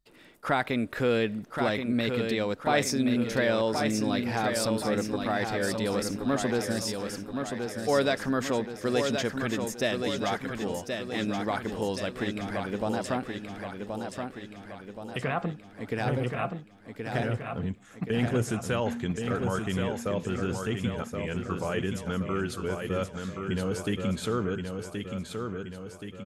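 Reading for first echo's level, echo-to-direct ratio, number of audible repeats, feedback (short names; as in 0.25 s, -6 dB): -5.5 dB, -4.0 dB, 6, 53%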